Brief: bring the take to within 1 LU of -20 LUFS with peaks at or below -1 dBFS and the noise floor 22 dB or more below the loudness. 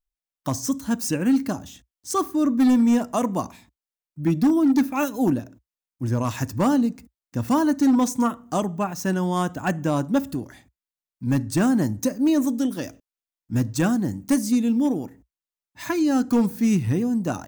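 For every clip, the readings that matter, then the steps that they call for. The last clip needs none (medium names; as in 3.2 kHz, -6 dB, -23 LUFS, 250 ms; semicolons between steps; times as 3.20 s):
clipped samples 0.9%; clipping level -13.5 dBFS; loudness -23.0 LUFS; peak level -13.5 dBFS; loudness target -20.0 LUFS
-> clip repair -13.5 dBFS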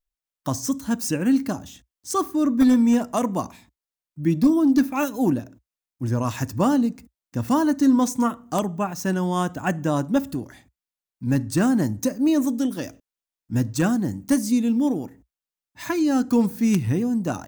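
clipped samples 0.0%; loudness -22.5 LUFS; peak level -4.5 dBFS; loudness target -20.0 LUFS
-> trim +2.5 dB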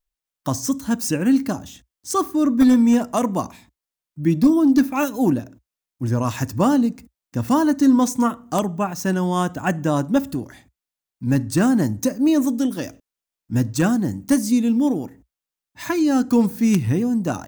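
loudness -20.0 LUFS; peak level -2.0 dBFS; noise floor -88 dBFS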